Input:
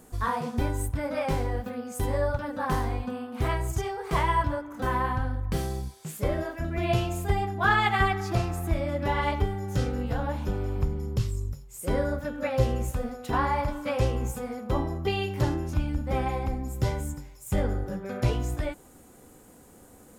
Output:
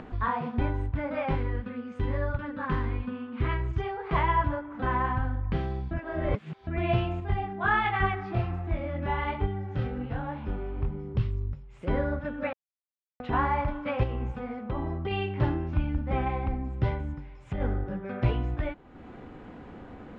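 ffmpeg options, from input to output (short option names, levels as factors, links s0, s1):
-filter_complex "[0:a]asettb=1/sr,asplit=3[s0][s1][s2];[s0]atrim=end=1.354[s3];[s1]atrim=start=1.35:end=3.8,asetpts=PTS-STARTPTS,afade=t=in:d=0.004:c=qsin,afade=t=out:st=2.446:d=0.004:c=qsin,equalizer=f=730:w=3.3:g=-14.5[s4];[s2]atrim=start=3.796[s5];[s3][s4]acrossfade=d=0.004:c1=hsin:c2=qsin[s6];[s6][s5]acrossfade=d=0.004:c1=qsin:c2=hsin,asettb=1/sr,asplit=3[s7][s8][s9];[s7]atrim=end=7.204[s10];[s8]atrim=start=7.2:end=11.15,asetpts=PTS-STARTPTS,afade=t=in:d=0.004:c=qsin,afade=t=out:st=3.946:d=0.004:c=qsin,flanger=delay=20:depth=5.5:speed=1.3[s11];[s9]atrim=start=11.146[s12];[s10][s11]acrossfade=d=0.004:c1=hsin:c2=qsin[s13];[s13][s12]acrossfade=d=0.004:c1=qsin:c2=hsin,asettb=1/sr,asplit=3[s14][s15][s16];[s14]atrim=end=14.034[s17];[s15]atrim=start=14.03:end=15.11,asetpts=PTS-STARTPTS,afade=t=in:d=0.004:c=qsin,afade=t=out:st=1.076:d=0.004:c=qsin,acompressor=threshold=0.0501:ratio=5:attack=3.2:release=140:knee=1:detection=peak[s18];[s16]atrim=start=15.106[s19];[s17][s18]acrossfade=d=0.004:c1=hsin:c2=qsin[s20];[s20][s19]acrossfade=d=0.004:c1=qsin:c2=hsin,asplit=3[s21][s22][s23];[s21]afade=t=out:st=16.95:d=0.02[s24];[s22]acompressor=threshold=0.0447:ratio=6:attack=3.2:release=140:knee=1:detection=peak,afade=t=in:st=16.95:d=0.02,afade=t=out:st=17.6:d=0.02[s25];[s23]afade=t=in:st=17.6:d=0.02[s26];[s24][s25][s26]amix=inputs=3:normalize=0,asplit=5[s27][s28][s29][s30][s31];[s27]atrim=end=5.912[s32];[s28]atrim=start=5.908:end=6.672,asetpts=PTS-STARTPTS,areverse[s33];[s29]atrim=start=6.668:end=12.53,asetpts=PTS-STARTPTS,afade=t=out:st=5.858:d=0.004:c=hsin[s34];[s30]atrim=start=12.53:end=13.2,asetpts=PTS-STARTPTS,volume=0[s35];[s31]atrim=start=13.2,asetpts=PTS-STARTPTS,afade=t=in:d=0.004:c=hsin[s36];[s32][s33]acrossfade=d=0.004:c1=hsin:c2=hsin[s37];[s34][s35][s36]concat=n=3:v=0:a=1[s38];[s37][s38]acrossfade=d=0.004:c1=hsin:c2=hsin,lowpass=f=3000:w=0.5412,lowpass=f=3000:w=1.3066,equalizer=f=500:t=o:w=0.48:g=-4,acompressor=mode=upward:threshold=0.02:ratio=2.5"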